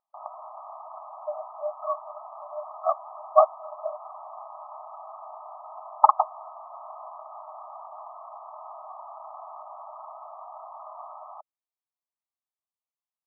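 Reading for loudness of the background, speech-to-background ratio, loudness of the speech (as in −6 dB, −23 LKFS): −42.5 LKFS, 16.5 dB, −26.0 LKFS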